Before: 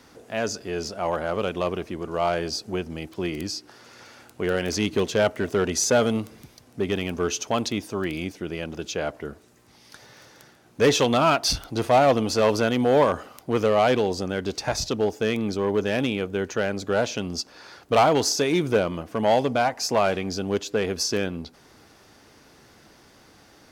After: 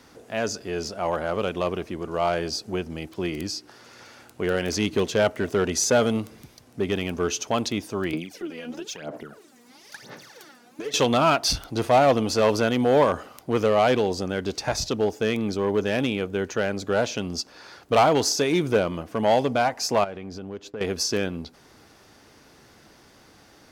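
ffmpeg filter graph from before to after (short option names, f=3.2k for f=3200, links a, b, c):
-filter_complex "[0:a]asettb=1/sr,asplit=3[a][b][c];[a]atrim=end=8.134[d];[b]atrim=start=8.13:end=10.94,asetpts=PTS-STARTPTS,afade=t=in:d=0.004:c=qsin,afade=t=out:st=2.806:d=0.004:c=qsin,highpass=f=150:w=0.5412,highpass=f=150:w=1.3066,acompressor=threshold=-35dB:ratio=5:attack=3.2:release=140:knee=1:detection=peak,aphaser=in_gain=1:out_gain=1:delay=4.2:decay=0.77:speed=1:type=sinusoidal[e];[c]atrim=start=10.936[f];[d][e]acrossfade=d=0.004:c1=hsin:c2=qsin[g];[g][f]acrossfade=d=0.004:c1=qsin:c2=hsin,asettb=1/sr,asplit=3[h][i][j];[h]atrim=end=20.044[k];[i]atrim=start=20.04:end=20.81,asetpts=PTS-STARTPTS,afade=t=in:d=0.004:c=qsin,afade=t=out:st=0.766:d=0.004:c=qsin,highshelf=f=3.3k:g=-12,acompressor=threshold=-34dB:ratio=3:attack=3.2:release=140:knee=1:detection=peak,agate=range=-33dB:threshold=-42dB:ratio=3:release=100:detection=peak[l];[j]atrim=start=20.806[m];[k][l]acrossfade=d=0.004:c1=hsin:c2=qsin[n];[n][m]acrossfade=d=0.004:c1=qsin:c2=hsin"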